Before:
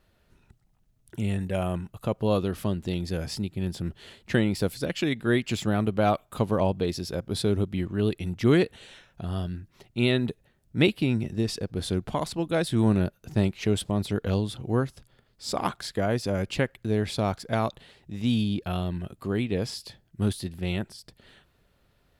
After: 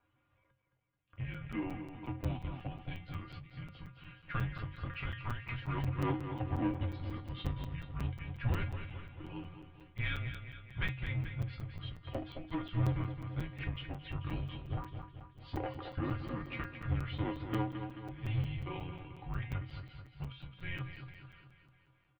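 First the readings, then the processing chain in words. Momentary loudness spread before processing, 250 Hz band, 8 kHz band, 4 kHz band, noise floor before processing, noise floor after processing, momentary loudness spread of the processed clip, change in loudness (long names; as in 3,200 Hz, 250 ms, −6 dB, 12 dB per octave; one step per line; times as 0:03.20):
10 LU, −14.5 dB, below −25 dB, −14.5 dB, −67 dBFS, −74 dBFS, 12 LU, −12.0 dB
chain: spectral magnitudes quantised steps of 15 dB
notch filter 540 Hz, Q 12
in parallel at −8.5 dB: wave folding −16.5 dBFS
on the sum: tuned comb filter 220 Hz, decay 0.23 s, harmonics all, mix 90%
asymmetric clip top −34 dBFS, bottom −21.5 dBFS
on a send: repeating echo 217 ms, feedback 54%, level −9 dB
on the sum: single-sideband voice off tune −350 Hz 230–3,300 Hz
regular buffer underruns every 0.18 s, samples 256, zero, from 0:00.44
every ending faded ahead of time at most 120 dB per second
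level +2.5 dB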